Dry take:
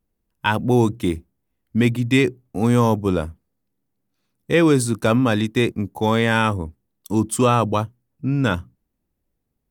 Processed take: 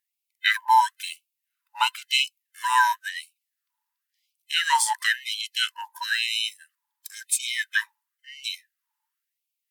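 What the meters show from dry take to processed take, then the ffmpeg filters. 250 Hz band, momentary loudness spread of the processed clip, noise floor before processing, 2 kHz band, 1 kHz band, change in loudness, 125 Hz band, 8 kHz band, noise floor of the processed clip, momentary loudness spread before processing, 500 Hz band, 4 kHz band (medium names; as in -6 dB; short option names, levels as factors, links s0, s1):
under -40 dB, 15 LU, -76 dBFS, +1.0 dB, +1.0 dB, -4.0 dB, under -40 dB, +3.0 dB, -84 dBFS, 10 LU, under -40 dB, +6.0 dB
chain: -af "afftfilt=real='real(if(lt(b,1008),b+24*(1-2*mod(floor(b/24),2)),b),0)':imag='imag(if(lt(b,1008),b+24*(1-2*mod(floor(b/24),2)),b),0)':win_size=2048:overlap=0.75,afftfilt=real='re*gte(b*sr/1024,820*pow(2200/820,0.5+0.5*sin(2*PI*0.97*pts/sr)))':imag='im*gte(b*sr/1024,820*pow(2200/820,0.5+0.5*sin(2*PI*0.97*pts/sr)))':win_size=1024:overlap=0.75,volume=1.41"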